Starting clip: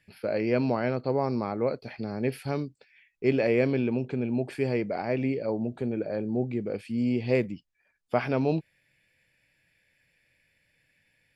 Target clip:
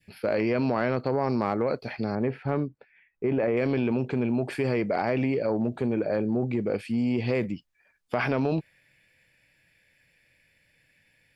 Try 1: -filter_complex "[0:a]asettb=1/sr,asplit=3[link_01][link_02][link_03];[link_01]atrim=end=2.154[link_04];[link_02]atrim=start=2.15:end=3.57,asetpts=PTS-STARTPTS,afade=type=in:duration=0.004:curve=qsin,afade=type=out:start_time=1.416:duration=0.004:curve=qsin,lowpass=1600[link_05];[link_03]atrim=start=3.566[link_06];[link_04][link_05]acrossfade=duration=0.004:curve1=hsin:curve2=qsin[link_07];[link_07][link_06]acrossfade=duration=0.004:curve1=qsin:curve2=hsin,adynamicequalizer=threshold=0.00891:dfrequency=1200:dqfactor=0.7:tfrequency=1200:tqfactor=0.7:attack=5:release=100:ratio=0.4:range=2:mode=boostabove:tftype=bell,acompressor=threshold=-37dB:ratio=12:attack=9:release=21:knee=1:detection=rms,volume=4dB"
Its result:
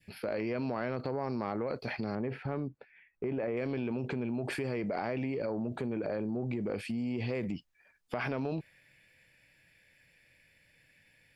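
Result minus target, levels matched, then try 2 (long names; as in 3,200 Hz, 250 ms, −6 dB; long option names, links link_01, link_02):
downward compressor: peak gain reduction +8.5 dB
-filter_complex "[0:a]asettb=1/sr,asplit=3[link_01][link_02][link_03];[link_01]atrim=end=2.154[link_04];[link_02]atrim=start=2.15:end=3.57,asetpts=PTS-STARTPTS,afade=type=in:duration=0.004:curve=qsin,afade=type=out:start_time=1.416:duration=0.004:curve=qsin,lowpass=1600[link_05];[link_03]atrim=start=3.566[link_06];[link_04][link_05]acrossfade=duration=0.004:curve1=hsin:curve2=qsin[link_07];[link_07][link_06]acrossfade=duration=0.004:curve1=qsin:curve2=hsin,adynamicequalizer=threshold=0.00891:dfrequency=1200:dqfactor=0.7:tfrequency=1200:tqfactor=0.7:attack=5:release=100:ratio=0.4:range=2:mode=boostabove:tftype=bell,acompressor=threshold=-27.5dB:ratio=12:attack=9:release=21:knee=1:detection=rms,volume=4dB"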